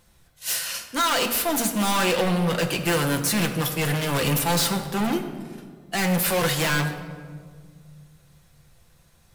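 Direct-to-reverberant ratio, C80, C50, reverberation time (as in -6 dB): 3.5 dB, 10.0 dB, 8.5 dB, 1.8 s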